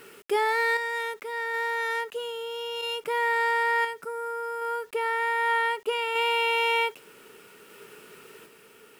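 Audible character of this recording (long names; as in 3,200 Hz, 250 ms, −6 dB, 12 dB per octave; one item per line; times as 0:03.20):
a quantiser's noise floor 10 bits, dither none
sample-and-hold tremolo 1.3 Hz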